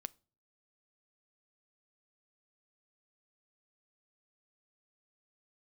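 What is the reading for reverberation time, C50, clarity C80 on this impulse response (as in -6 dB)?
0.40 s, 27.0 dB, 32.5 dB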